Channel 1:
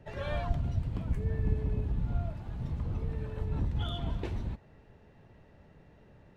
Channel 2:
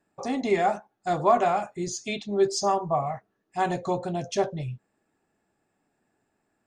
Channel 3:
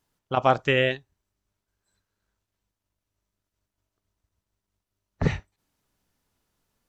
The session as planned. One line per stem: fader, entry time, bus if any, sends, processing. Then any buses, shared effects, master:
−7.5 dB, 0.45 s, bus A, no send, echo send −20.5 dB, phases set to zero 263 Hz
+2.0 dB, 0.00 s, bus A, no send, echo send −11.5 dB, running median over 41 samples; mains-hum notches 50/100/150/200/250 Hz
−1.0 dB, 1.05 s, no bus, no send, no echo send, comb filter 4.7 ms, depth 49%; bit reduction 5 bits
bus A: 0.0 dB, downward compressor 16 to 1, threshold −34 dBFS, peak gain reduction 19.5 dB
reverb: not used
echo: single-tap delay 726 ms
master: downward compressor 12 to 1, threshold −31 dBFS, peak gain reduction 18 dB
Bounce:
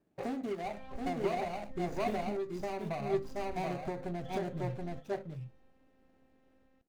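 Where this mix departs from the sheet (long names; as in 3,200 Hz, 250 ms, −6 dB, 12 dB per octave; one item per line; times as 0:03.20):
stem 3: muted
master: missing downward compressor 12 to 1, threshold −31 dBFS, peak gain reduction 18 dB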